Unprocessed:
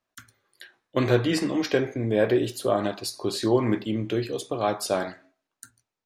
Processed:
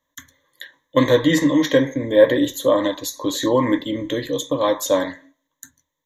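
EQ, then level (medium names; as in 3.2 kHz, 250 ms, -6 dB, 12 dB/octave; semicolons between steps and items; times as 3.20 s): rippled EQ curve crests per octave 1.1, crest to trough 18 dB; +3.5 dB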